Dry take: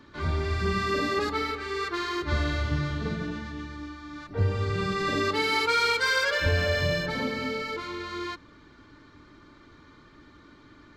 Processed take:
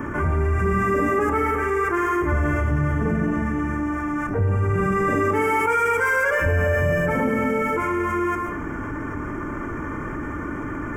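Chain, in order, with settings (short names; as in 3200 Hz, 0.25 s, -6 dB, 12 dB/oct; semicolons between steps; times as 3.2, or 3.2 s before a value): in parallel at -4 dB: crossover distortion -43.5 dBFS; on the sum: Butterworth band-stop 4100 Hz, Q 0.65; reverb RT60 0.45 s, pre-delay 97 ms, DRR 10.5 dB; fast leveller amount 70%; gain -2 dB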